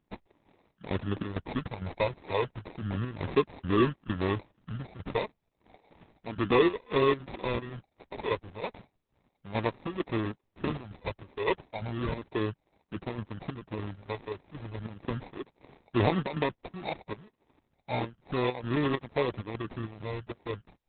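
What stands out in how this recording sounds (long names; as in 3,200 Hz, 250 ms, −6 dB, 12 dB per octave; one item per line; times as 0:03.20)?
phaser sweep stages 8, 0.33 Hz, lowest notch 230–2,500 Hz
aliases and images of a low sample rate 1,500 Hz, jitter 0%
chopped level 2.2 Hz, depth 60%, duty 70%
Opus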